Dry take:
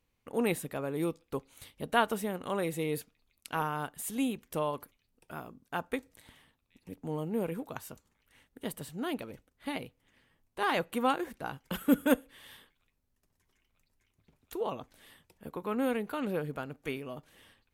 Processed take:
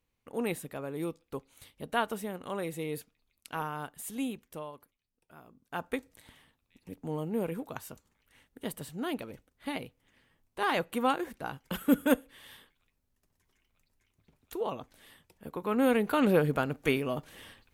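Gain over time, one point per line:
4.34 s -3 dB
4.74 s -12 dB
5.36 s -12 dB
5.85 s +0.5 dB
15.47 s +0.5 dB
16.21 s +9 dB

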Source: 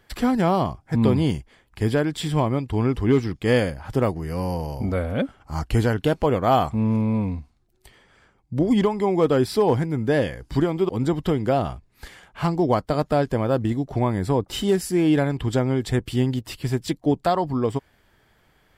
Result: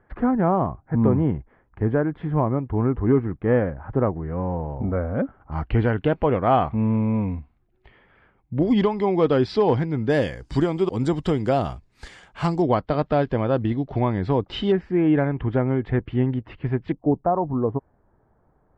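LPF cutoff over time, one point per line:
LPF 24 dB/oct
1600 Hz
from 5.52 s 2700 Hz
from 8.62 s 4700 Hz
from 10.1 s 8500 Hz
from 12.62 s 3800 Hz
from 14.72 s 2200 Hz
from 16.92 s 1100 Hz

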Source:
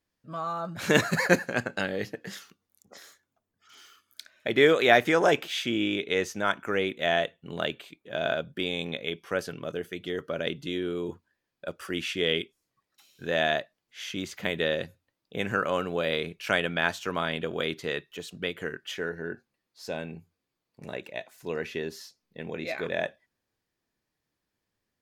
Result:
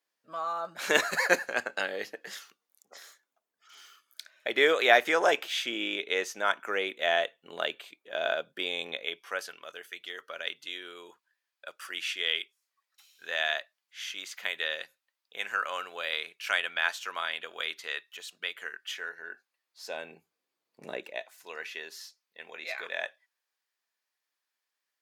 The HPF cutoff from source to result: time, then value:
8.9 s 530 Hz
9.62 s 1100 Hz
19.27 s 1100 Hz
20.93 s 270 Hz
21.48 s 990 Hz

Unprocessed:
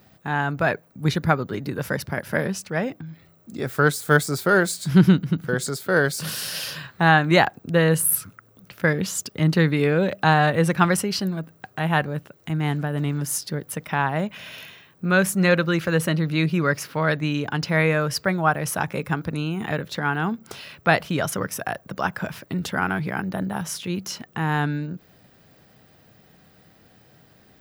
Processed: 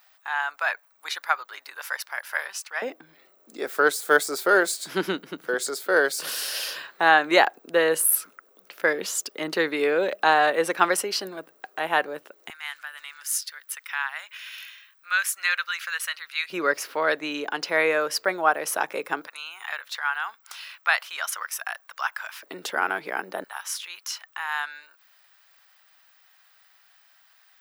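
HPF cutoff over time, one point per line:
HPF 24 dB/oct
890 Hz
from 2.82 s 350 Hz
from 12.5 s 1300 Hz
from 16.5 s 350 Hz
from 19.27 s 1000 Hz
from 22.43 s 370 Hz
from 23.44 s 1000 Hz

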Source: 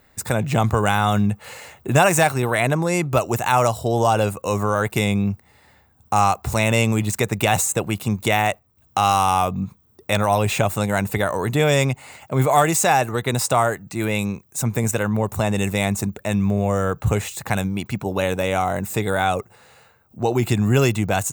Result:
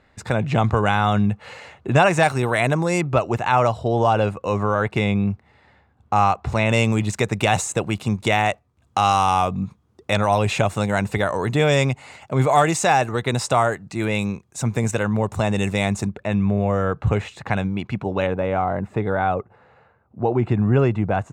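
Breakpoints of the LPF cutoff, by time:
4200 Hz
from 2.23 s 7800 Hz
from 3.01 s 3300 Hz
from 6.69 s 6400 Hz
from 16.08 s 3100 Hz
from 18.27 s 1500 Hz

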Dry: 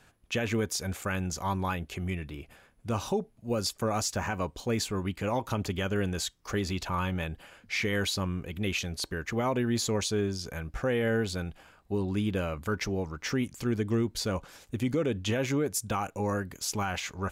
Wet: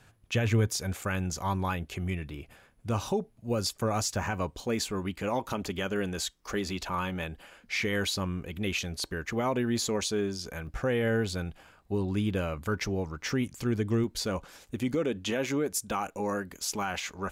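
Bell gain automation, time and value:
bell 110 Hz 0.55 oct
+10 dB
from 0.78 s +2.5 dB
from 4.66 s -7 dB
from 5.53 s -13.5 dB
from 7.72 s -3 dB
from 9.88 s -9.5 dB
from 10.67 s +1.5 dB
from 14.04 s -6 dB
from 14.95 s -14.5 dB

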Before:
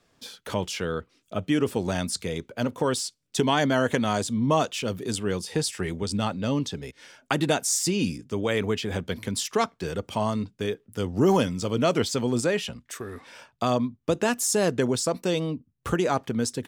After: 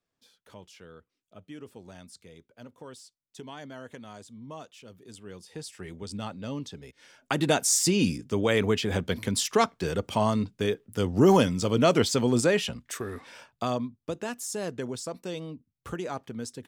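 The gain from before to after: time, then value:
4.93 s -20 dB
6.11 s -9 dB
6.88 s -9 dB
7.62 s +1.5 dB
13.07 s +1.5 dB
14.21 s -10 dB

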